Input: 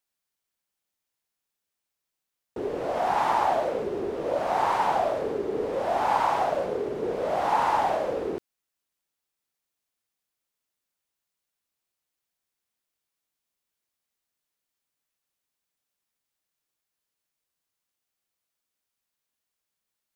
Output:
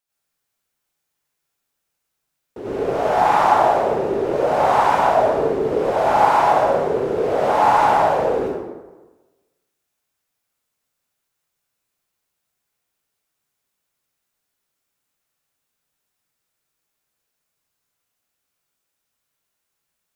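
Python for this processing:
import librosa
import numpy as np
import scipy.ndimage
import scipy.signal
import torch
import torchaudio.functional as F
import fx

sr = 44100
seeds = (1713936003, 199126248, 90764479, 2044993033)

y = fx.rev_plate(x, sr, seeds[0], rt60_s=1.2, hf_ratio=0.6, predelay_ms=75, drr_db=-9.0)
y = y * 10.0 ** (-1.0 / 20.0)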